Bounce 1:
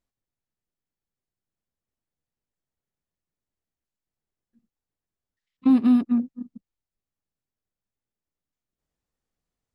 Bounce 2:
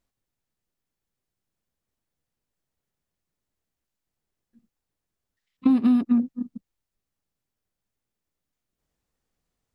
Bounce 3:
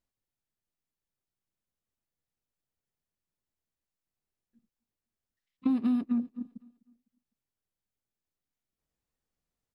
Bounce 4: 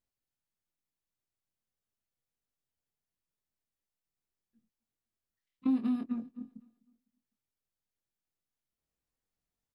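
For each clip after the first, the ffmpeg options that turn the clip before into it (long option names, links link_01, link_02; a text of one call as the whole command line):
ffmpeg -i in.wav -af "acompressor=threshold=-21dB:ratio=6,volume=5dB" out.wav
ffmpeg -i in.wav -af "aecho=1:1:253|506|759:0.0708|0.0269|0.0102,volume=-8dB" out.wav
ffmpeg -i in.wav -filter_complex "[0:a]asplit=2[link_01][link_02];[link_02]adelay=23,volume=-6.5dB[link_03];[link_01][link_03]amix=inputs=2:normalize=0,volume=-4dB" out.wav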